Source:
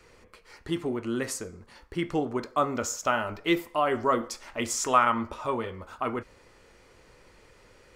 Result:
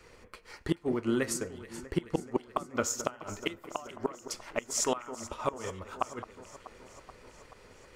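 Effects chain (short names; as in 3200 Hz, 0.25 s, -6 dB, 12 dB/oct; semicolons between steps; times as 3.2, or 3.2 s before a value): transient shaper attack +5 dB, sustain -4 dB; flipped gate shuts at -15 dBFS, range -25 dB; echo with dull and thin repeats by turns 0.215 s, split 1800 Hz, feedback 81%, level -13.5 dB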